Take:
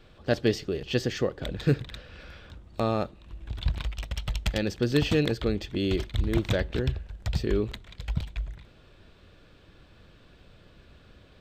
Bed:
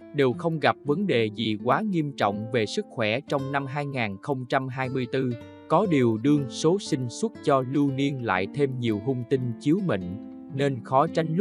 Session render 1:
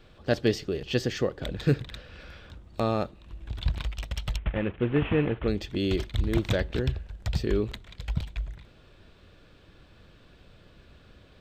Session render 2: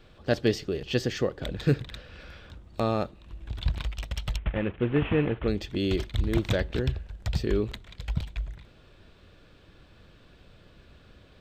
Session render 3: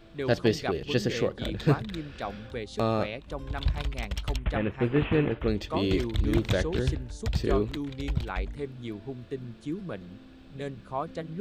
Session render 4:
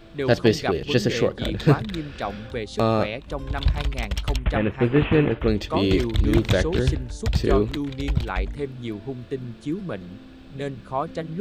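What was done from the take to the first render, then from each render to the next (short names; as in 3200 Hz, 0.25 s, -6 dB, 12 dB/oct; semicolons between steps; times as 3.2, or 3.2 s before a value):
4.37–5.48 CVSD 16 kbps
nothing audible
add bed -11.5 dB
gain +6 dB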